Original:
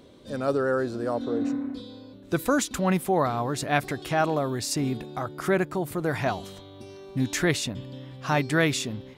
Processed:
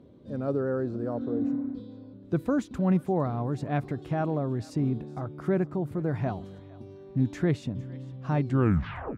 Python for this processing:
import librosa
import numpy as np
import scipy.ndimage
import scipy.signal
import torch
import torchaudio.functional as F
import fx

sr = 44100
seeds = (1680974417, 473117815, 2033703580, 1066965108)

y = fx.tape_stop_end(x, sr, length_s=0.73)
y = scipy.signal.sosfilt(scipy.signal.butter(2, 110.0, 'highpass', fs=sr, output='sos'), y)
y = fx.tilt_eq(y, sr, slope=-4.5)
y = fx.echo_thinned(y, sr, ms=456, feedback_pct=37, hz=1100.0, wet_db=-19)
y = y * 10.0 ** (-9.0 / 20.0)